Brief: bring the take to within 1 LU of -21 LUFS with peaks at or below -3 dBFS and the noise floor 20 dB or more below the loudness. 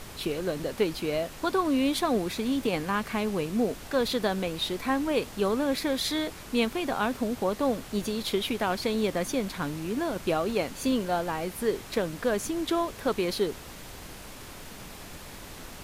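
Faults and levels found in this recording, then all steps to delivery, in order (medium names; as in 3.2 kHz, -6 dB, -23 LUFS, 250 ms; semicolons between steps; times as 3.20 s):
noise floor -44 dBFS; noise floor target -49 dBFS; loudness -29.0 LUFS; peak level -14.0 dBFS; loudness target -21.0 LUFS
-> noise print and reduce 6 dB; trim +8 dB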